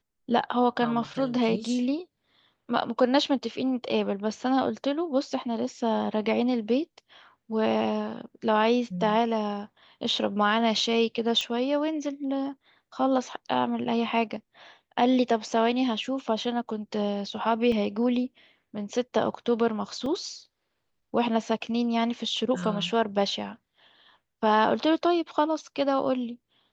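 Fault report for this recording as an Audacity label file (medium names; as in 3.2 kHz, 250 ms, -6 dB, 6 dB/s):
11.410000	11.410000	pop -16 dBFS
17.720000	17.720000	dropout 3.4 ms
20.060000	20.060000	dropout 2.6 ms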